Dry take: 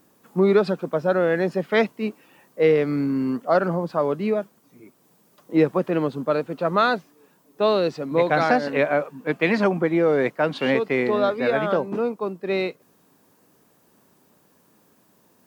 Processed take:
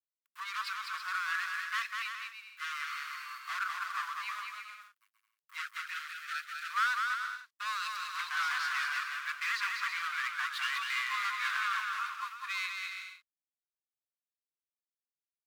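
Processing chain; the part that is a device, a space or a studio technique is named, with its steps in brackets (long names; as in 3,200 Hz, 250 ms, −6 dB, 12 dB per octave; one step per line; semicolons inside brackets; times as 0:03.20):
early transistor amplifier (dead-zone distortion −42.5 dBFS; slew-rate limiting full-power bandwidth 79 Hz)
0:05.62–0:06.70: Butterworth high-pass 1,300 Hz 96 dB per octave
Chebyshev high-pass filter 1,100 Hz, order 6
bouncing-ball delay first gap 200 ms, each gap 0.65×, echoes 5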